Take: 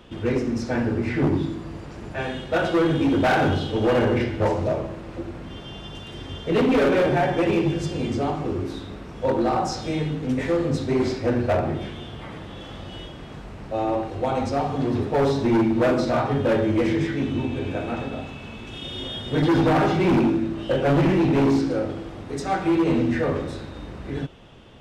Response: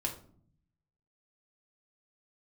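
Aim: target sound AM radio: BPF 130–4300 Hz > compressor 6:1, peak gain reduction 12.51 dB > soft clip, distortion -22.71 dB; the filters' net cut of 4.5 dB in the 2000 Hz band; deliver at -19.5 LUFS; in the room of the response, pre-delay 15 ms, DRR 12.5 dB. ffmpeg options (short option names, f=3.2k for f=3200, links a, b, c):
-filter_complex "[0:a]equalizer=f=2k:t=o:g=-6,asplit=2[a][b];[1:a]atrim=start_sample=2205,adelay=15[c];[b][c]afir=irnorm=-1:irlink=0,volume=-15dB[d];[a][d]amix=inputs=2:normalize=0,highpass=130,lowpass=4.3k,acompressor=threshold=-27dB:ratio=6,asoftclip=threshold=-21.5dB,volume=13.5dB"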